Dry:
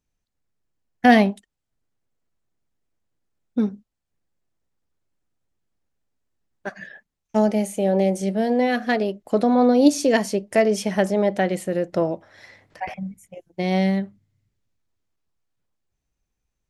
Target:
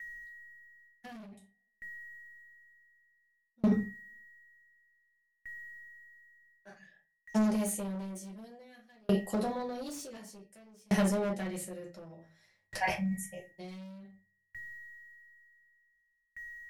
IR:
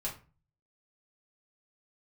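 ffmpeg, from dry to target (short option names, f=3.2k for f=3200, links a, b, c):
-filter_complex "[1:a]atrim=start_sample=2205[a];[0:a][a]afir=irnorm=-1:irlink=0,aeval=exprs='val(0)+0.00316*sin(2*PI*1900*n/s)':c=same,acrossover=split=380[b][c];[c]acompressor=threshold=-26dB:ratio=2[d];[b][d]amix=inputs=2:normalize=0,asplit=2[e][f];[f]asoftclip=type=tanh:threshold=-14.5dB,volume=-5dB[g];[e][g]amix=inputs=2:normalize=0,crystalizer=i=4:c=0,asoftclip=type=hard:threshold=-13dB,areverse,acompressor=threshold=-25dB:ratio=6,areverse,aeval=exprs='val(0)*pow(10,-38*if(lt(mod(0.55*n/s,1),2*abs(0.55)/1000),1-mod(0.55*n/s,1)/(2*abs(0.55)/1000),(mod(0.55*n/s,1)-2*abs(0.55)/1000)/(1-2*abs(0.55)/1000))/20)':c=same,volume=1.5dB"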